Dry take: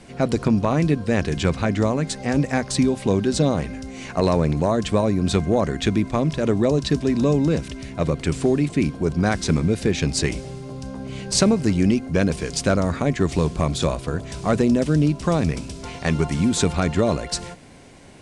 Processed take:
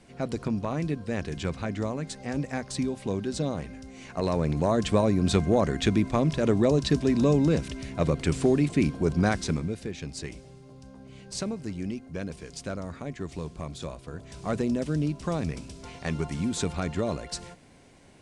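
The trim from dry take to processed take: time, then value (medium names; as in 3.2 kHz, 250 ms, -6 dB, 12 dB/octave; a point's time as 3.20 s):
4.08 s -10 dB
4.79 s -3 dB
9.24 s -3 dB
9.91 s -15 dB
14.02 s -15 dB
14.52 s -9 dB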